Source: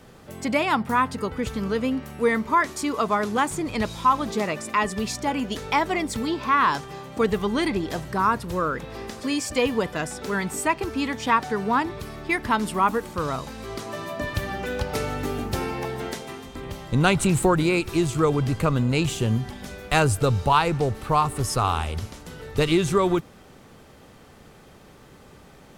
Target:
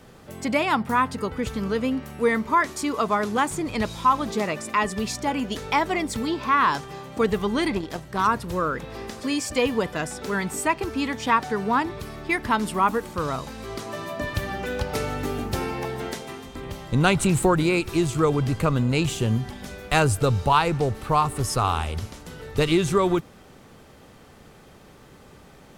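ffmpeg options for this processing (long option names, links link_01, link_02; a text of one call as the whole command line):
ffmpeg -i in.wav -filter_complex "[0:a]asplit=3[link_01][link_02][link_03];[link_01]afade=type=out:start_time=7.75:duration=0.02[link_04];[link_02]aeval=exprs='0.316*(cos(1*acos(clip(val(0)/0.316,-1,1)))-cos(1*PI/2))+0.0251*(cos(7*acos(clip(val(0)/0.316,-1,1)))-cos(7*PI/2))':channel_layout=same,afade=type=in:start_time=7.75:duration=0.02,afade=type=out:start_time=8.26:duration=0.02[link_05];[link_03]afade=type=in:start_time=8.26:duration=0.02[link_06];[link_04][link_05][link_06]amix=inputs=3:normalize=0" out.wav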